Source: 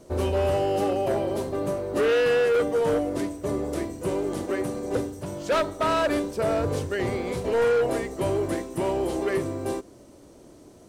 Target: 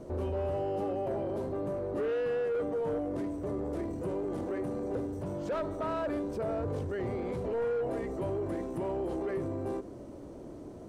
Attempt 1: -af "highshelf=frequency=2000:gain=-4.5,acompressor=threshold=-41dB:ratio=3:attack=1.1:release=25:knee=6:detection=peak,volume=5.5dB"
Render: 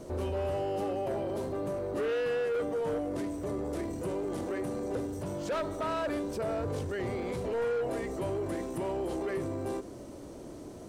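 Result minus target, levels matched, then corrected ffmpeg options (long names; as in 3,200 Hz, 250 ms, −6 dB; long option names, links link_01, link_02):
4,000 Hz band +7.5 dB
-af "highshelf=frequency=2000:gain=-16,acompressor=threshold=-41dB:ratio=3:attack=1.1:release=25:knee=6:detection=peak,volume=5.5dB"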